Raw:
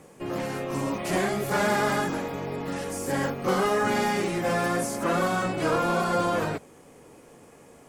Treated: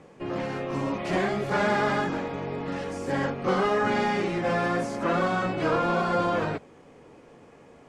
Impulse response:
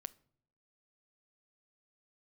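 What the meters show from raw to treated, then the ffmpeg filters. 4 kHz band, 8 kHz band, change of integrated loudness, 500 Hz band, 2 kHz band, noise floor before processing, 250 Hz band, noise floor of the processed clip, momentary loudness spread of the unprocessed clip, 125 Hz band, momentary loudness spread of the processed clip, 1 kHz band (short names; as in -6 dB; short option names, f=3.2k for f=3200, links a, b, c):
-2.0 dB, -11.0 dB, 0.0 dB, 0.0 dB, 0.0 dB, -52 dBFS, 0.0 dB, -52 dBFS, 8 LU, 0.0 dB, 8 LU, 0.0 dB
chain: -af "lowpass=4.2k"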